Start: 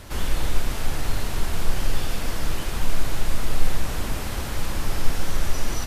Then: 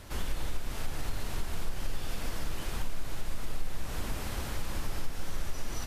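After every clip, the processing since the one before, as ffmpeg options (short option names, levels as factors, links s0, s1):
-af "acompressor=threshold=0.1:ratio=2.5,volume=0.473"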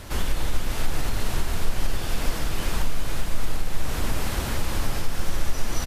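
-af "aecho=1:1:420:0.398,volume=2.66"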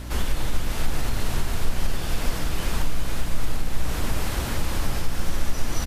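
-af "aeval=exprs='val(0)+0.0178*(sin(2*PI*60*n/s)+sin(2*PI*2*60*n/s)/2+sin(2*PI*3*60*n/s)/3+sin(2*PI*4*60*n/s)/4+sin(2*PI*5*60*n/s)/5)':c=same"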